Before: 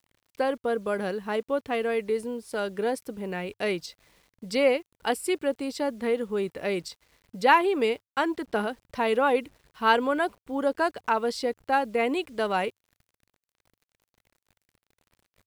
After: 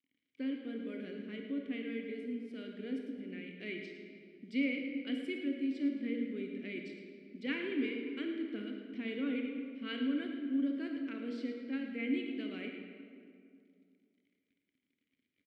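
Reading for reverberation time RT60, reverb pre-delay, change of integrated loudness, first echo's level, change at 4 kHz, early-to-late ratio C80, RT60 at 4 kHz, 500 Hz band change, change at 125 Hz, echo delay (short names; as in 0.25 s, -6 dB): 2.3 s, 31 ms, -11.0 dB, -11.0 dB, -11.5 dB, 4.0 dB, 1.3 s, -18.0 dB, under -10 dB, 0.109 s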